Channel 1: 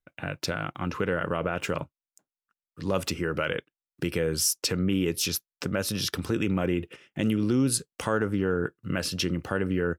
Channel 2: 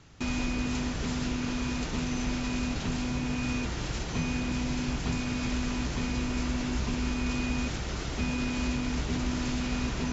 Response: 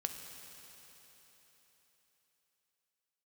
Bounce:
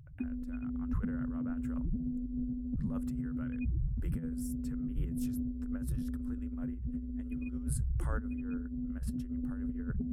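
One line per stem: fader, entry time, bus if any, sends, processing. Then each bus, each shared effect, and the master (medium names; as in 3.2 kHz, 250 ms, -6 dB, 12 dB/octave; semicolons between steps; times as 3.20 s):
-16.0 dB, 0.00 s, no send, high-pass 740 Hz 6 dB/octave; high-order bell 3.8 kHz -14.5 dB
+2.0 dB, 0.00 s, no send, loudest bins only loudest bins 4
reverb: none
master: compressor with a negative ratio -34 dBFS, ratio -0.5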